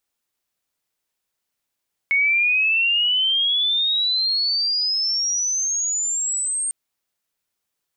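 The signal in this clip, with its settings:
glide logarithmic 2,200 Hz → 8,700 Hz −15 dBFS → −21 dBFS 4.60 s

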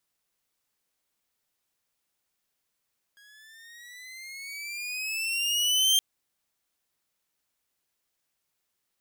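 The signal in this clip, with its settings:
pitch glide with a swell saw, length 2.82 s, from 1,640 Hz, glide +11.5 semitones, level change +35 dB, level −15.5 dB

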